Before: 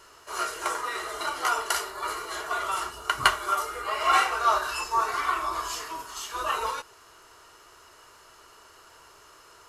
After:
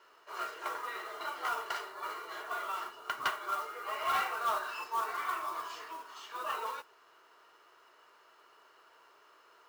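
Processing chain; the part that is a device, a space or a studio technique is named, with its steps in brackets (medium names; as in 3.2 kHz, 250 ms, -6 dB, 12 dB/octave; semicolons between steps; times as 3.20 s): carbon microphone (band-pass 340–3400 Hz; saturation -16 dBFS, distortion -15 dB; modulation noise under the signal 18 dB); trim -7.5 dB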